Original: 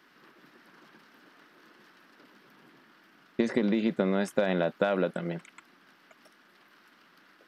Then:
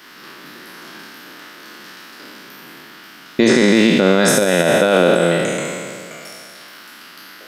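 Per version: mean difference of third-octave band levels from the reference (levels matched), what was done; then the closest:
8.0 dB: peak hold with a decay on every bin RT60 2.20 s
high-shelf EQ 2,700 Hz +11 dB
boost into a limiter +13.5 dB
level −1 dB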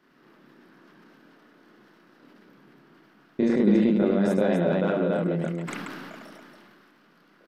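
6.0 dB: tilt shelving filter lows +5.5 dB, about 750 Hz
loudspeakers that aren't time-aligned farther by 10 metres 0 dB, 35 metres −3 dB, 96 metres −2 dB
level that may fall only so fast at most 21 dB per second
level −4 dB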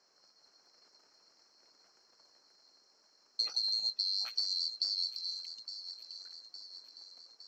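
12.0 dB: neighbouring bands swapped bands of 4,000 Hz
three-way crossover with the lows and the highs turned down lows −21 dB, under 230 Hz, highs −19 dB, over 3,700 Hz
delay with a high-pass on its return 862 ms, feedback 56%, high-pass 4,600 Hz, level −8 dB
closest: second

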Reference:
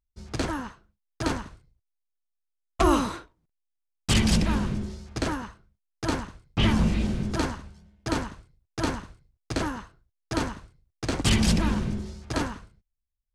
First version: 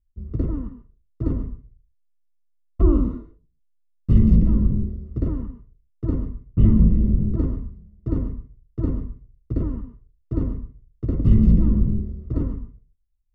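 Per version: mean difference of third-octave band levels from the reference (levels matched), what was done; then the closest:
14.0 dB: moving average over 55 samples
spectral tilt −2.5 dB per octave
reverb whose tail is shaped and stops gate 160 ms rising, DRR 10.5 dB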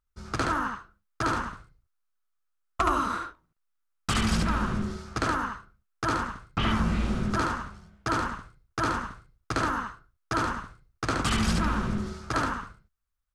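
4.5 dB: parametric band 1,300 Hz +14 dB 0.72 octaves
downward compressor 4 to 1, threshold −25 dBFS, peak gain reduction 11.5 dB
single-tap delay 72 ms −3.5 dB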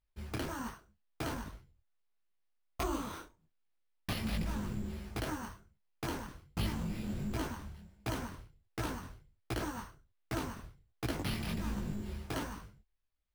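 7.0 dB: downward compressor 6 to 1, threshold −33 dBFS, peak gain reduction 15.5 dB
bad sample-rate conversion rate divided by 6×, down none, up hold
micro pitch shift up and down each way 47 cents
level +2.5 dB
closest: second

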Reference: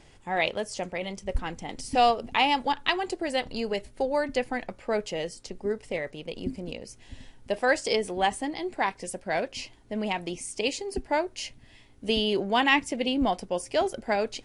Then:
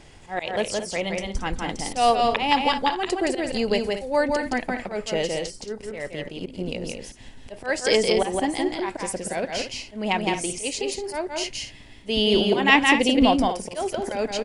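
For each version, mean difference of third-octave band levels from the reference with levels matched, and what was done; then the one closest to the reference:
6.5 dB: volume swells 198 ms
loudspeakers that aren't time-aligned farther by 58 metres −3 dB, 77 metres −11 dB
level +6 dB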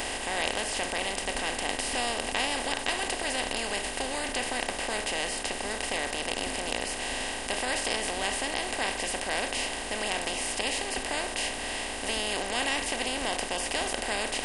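14.0 dB: compressor on every frequency bin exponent 0.2
first-order pre-emphasis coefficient 0.8
level −3.5 dB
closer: first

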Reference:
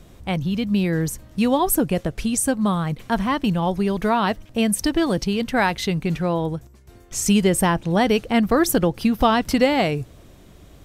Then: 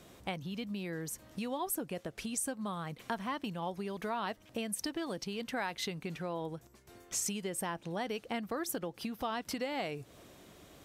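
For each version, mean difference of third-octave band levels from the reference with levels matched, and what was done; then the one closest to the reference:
5.0 dB: downward compressor 6 to 1, threshold −29 dBFS, peak gain reduction 16 dB
high-pass filter 340 Hz 6 dB per octave
level −3 dB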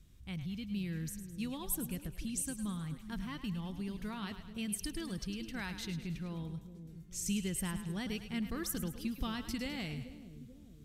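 6.5 dB: guitar amp tone stack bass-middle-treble 6-0-2
on a send: echo with a time of its own for lows and highs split 520 Hz, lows 437 ms, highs 105 ms, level −10.5 dB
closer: first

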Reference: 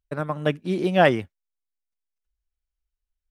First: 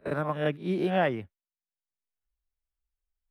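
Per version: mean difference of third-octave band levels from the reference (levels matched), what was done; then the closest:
4.5 dB: peak hold with a rise ahead of every peak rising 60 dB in 0.34 s
noise gate with hold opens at −32 dBFS
parametric band 7,000 Hz −13.5 dB 1.3 octaves
multiband upward and downward compressor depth 70%
level −5.5 dB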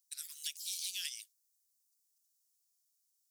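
26.5 dB: inverse Chebyshev high-pass filter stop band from 920 Hz, stop band 80 dB
downward compressor, threshold −55 dBFS, peak gain reduction 10.5 dB
delay with pitch and tempo change per echo 98 ms, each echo +5 semitones, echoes 3, each echo −6 dB
level +18 dB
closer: first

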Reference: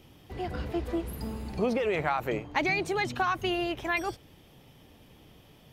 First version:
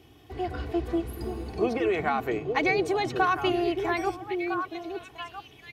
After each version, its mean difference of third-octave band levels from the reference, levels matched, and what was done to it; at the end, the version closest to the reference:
5.0 dB: high-pass filter 56 Hz
high-shelf EQ 5,500 Hz −4.5 dB
comb filter 2.7 ms, depth 62%
on a send: echo through a band-pass that steps 435 ms, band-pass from 160 Hz, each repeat 1.4 octaves, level 0 dB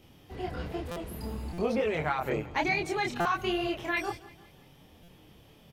2.0 dB: multi-voice chorus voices 2, 1.1 Hz, delay 26 ms, depth 3.7 ms
on a send: repeating echo 170 ms, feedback 47%, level −19.5 dB
on the sum: buffer that repeats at 0:00.91/0:01.53/0:03.20/0:05.03, samples 256, times 8
level +2 dB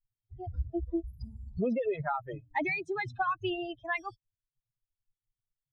18.0 dB: spectral dynamics exaggerated over time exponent 3
low-pass filter 2,600 Hz 12 dB per octave
low-shelf EQ 120 Hz +7 dB
in parallel at −2 dB: downward compressor, threshold −44 dBFS, peak gain reduction 16 dB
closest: second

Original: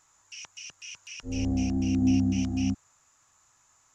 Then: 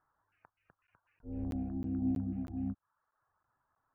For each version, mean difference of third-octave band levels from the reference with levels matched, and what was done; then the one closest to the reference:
6.5 dB: reverb reduction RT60 0.59 s
elliptic low-pass filter 1,600 Hz, stop band 60 dB
regular buffer underruns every 0.32 s, samples 512, zero, from 0:00.87
level −7.5 dB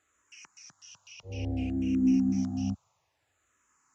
4.0 dB: high-pass filter 66 Hz
high-shelf EQ 3,300 Hz −8.5 dB
frequency shifter mixed with the dry sound −0.59 Hz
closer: second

